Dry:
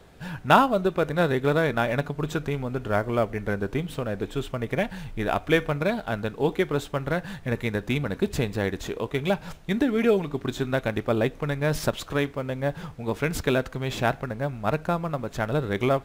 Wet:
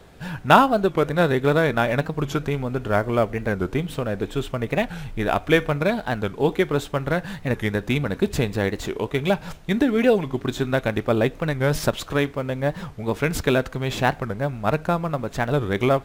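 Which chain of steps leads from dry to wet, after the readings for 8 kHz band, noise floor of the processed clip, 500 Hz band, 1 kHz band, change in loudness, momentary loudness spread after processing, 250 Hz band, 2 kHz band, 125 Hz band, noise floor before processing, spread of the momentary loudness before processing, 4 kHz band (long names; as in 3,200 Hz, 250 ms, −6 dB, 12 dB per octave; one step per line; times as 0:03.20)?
+3.5 dB, −42 dBFS, +3.5 dB, +3.5 dB, +3.5 dB, 8 LU, +3.5 dB, +3.5 dB, +3.5 dB, −45 dBFS, 8 LU, +3.5 dB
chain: wow of a warped record 45 rpm, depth 160 cents
level +3.5 dB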